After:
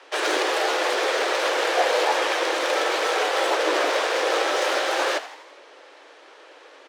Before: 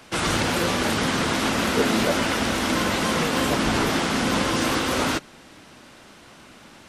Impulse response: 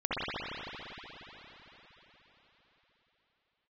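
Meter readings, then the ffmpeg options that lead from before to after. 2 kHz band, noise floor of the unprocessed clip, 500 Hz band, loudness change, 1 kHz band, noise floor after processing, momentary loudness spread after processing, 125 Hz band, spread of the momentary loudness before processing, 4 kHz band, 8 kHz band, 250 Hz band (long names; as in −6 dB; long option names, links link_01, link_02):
+1.5 dB, −48 dBFS, +3.5 dB, 0.0 dB, +2.0 dB, −49 dBFS, 2 LU, below −40 dB, 2 LU, 0.0 dB, −3.5 dB, −11.5 dB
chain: -filter_complex "[0:a]adynamicsmooth=sensitivity=3:basefreq=5000,afreqshift=270,asplit=6[link_01][link_02][link_03][link_04][link_05][link_06];[link_02]adelay=82,afreqshift=120,volume=-14dB[link_07];[link_03]adelay=164,afreqshift=240,volume=-19.5dB[link_08];[link_04]adelay=246,afreqshift=360,volume=-25dB[link_09];[link_05]adelay=328,afreqshift=480,volume=-30.5dB[link_10];[link_06]adelay=410,afreqshift=600,volume=-36.1dB[link_11];[link_01][link_07][link_08][link_09][link_10][link_11]amix=inputs=6:normalize=0"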